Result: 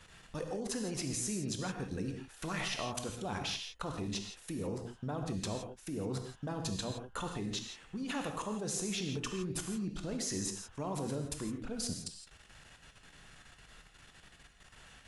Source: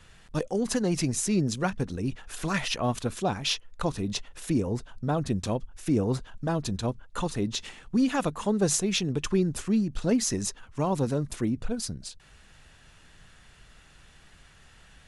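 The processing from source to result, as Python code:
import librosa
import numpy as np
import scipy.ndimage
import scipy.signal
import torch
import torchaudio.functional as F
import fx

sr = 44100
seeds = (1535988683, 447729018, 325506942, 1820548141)

y = fx.low_shelf(x, sr, hz=140.0, db=-6.5)
y = fx.level_steps(y, sr, step_db=19)
y = fx.rev_gated(y, sr, seeds[0], gate_ms=190, shape='flat', drr_db=3.5)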